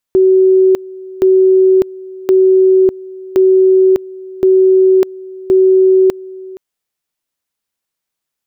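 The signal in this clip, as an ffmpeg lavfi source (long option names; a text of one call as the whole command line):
ffmpeg -f lavfi -i "aevalsrc='pow(10,(-5-21*gte(mod(t,1.07),0.6))/20)*sin(2*PI*377*t)':duration=6.42:sample_rate=44100" out.wav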